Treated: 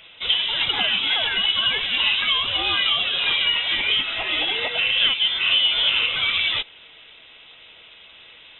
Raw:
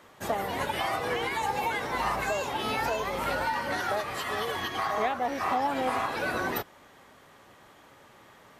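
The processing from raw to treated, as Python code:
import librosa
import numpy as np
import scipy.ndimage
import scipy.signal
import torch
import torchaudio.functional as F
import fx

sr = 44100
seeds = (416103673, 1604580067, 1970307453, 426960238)

y = fx.notch(x, sr, hz=2000.0, q=8.8)
y = fx.freq_invert(y, sr, carrier_hz=3800)
y = y * librosa.db_to_amplitude(8.5)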